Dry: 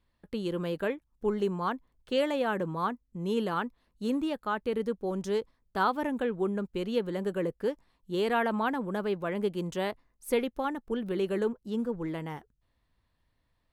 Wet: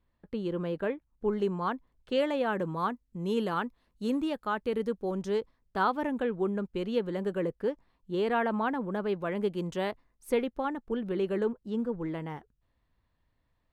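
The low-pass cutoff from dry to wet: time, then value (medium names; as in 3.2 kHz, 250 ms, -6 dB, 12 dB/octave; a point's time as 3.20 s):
low-pass 6 dB/octave
1.8 kHz
from 1.33 s 4.1 kHz
from 2.59 s 11 kHz
from 5.11 s 4.2 kHz
from 7.62 s 2.4 kHz
from 9.09 s 5.2 kHz
from 10.31 s 2.8 kHz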